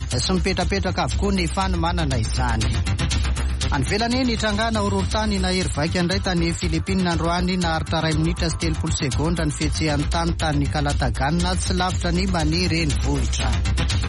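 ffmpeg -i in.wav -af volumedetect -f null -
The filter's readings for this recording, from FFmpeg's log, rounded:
mean_volume: -21.0 dB
max_volume: -10.4 dB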